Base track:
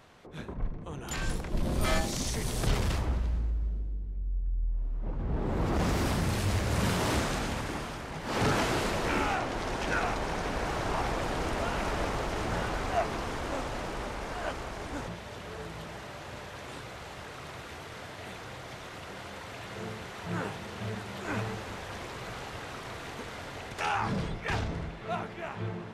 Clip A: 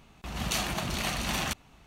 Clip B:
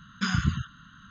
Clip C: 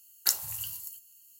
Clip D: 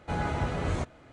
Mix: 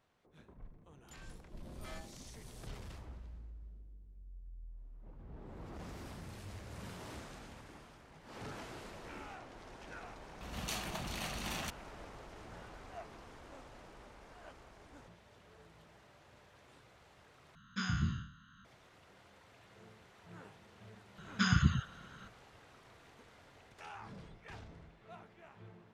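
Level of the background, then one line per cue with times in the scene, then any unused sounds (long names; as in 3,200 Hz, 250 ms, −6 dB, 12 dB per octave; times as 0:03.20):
base track −19.5 dB
0:10.17: mix in A −10 dB
0:17.55: overwrite with B −11.5 dB + peak hold with a decay on every bin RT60 0.52 s
0:21.18: mix in B −3 dB
not used: C, D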